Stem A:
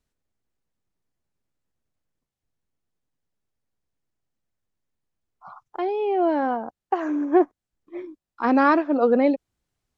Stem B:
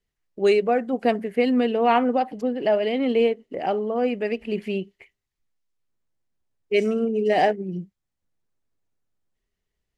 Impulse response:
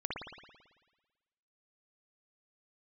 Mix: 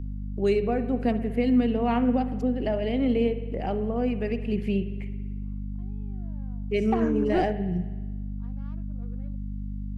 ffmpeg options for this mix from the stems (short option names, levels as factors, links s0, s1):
-filter_complex "[0:a]asoftclip=type=tanh:threshold=0.178,volume=0.708[s0];[1:a]aeval=exprs='val(0)+0.0178*(sin(2*PI*50*n/s)+sin(2*PI*2*50*n/s)/2+sin(2*PI*3*50*n/s)/3+sin(2*PI*4*50*n/s)/4+sin(2*PI*5*50*n/s)/5)':c=same,acrossover=split=240[s1][s2];[s2]acompressor=threshold=0.00224:ratio=1.5[s3];[s1][s3]amix=inputs=2:normalize=0,volume=1.33,asplit=3[s4][s5][s6];[s5]volume=0.251[s7];[s6]apad=whole_len=439801[s8];[s0][s8]sidechaingate=range=0.0251:threshold=0.0501:ratio=16:detection=peak[s9];[2:a]atrim=start_sample=2205[s10];[s7][s10]afir=irnorm=-1:irlink=0[s11];[s9][s4][s11]amix=inputs=3:normalize=0"